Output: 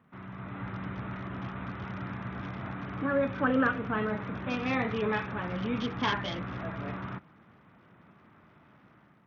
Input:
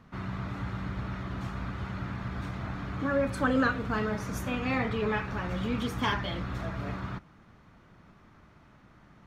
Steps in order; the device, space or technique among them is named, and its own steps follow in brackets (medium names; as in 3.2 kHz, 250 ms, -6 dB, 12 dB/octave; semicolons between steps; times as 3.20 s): Bluetooth headset (high-pass 120 Hz 12 dB/octave; level rider gain up to 7 dB; resampled via 8 kHz; trim -7 dB; SBC 64 kbps 48 kHz)